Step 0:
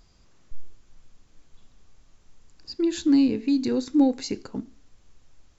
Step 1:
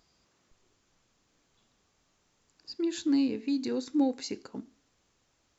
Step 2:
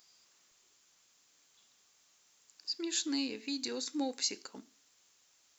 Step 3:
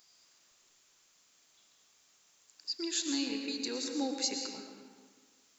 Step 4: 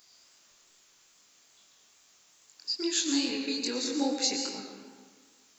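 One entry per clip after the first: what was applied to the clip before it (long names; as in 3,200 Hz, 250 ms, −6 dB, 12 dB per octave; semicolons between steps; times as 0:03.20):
high-pass filter 260 Hz 6 dB per octave; level −4.5 dB
spectral tilt +4 dB per octave; level −2.5 dB
comb and all-pass reverb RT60 1.6 s, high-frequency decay 0.7×, pre-delay 75 ms, DRR 3 dB
chorus effect 2.4 Hz, delay 20 ms, depth 6 ms; level +8 dB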